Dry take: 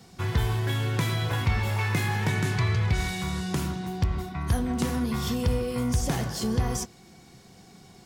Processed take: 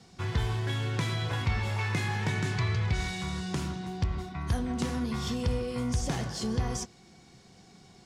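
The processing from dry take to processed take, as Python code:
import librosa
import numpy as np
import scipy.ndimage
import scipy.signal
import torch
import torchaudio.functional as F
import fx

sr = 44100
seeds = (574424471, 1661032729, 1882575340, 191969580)

y = scipy.signal.sosfilt(scipy.signal.butter(2, 6900.0, 'lowpass', fs=sr, output='sos'), x)
y = fx.high_shelf(y, sr, hz=4700.0, db=4.5)
y = y * librosa.db_to_amplitude(-4.0)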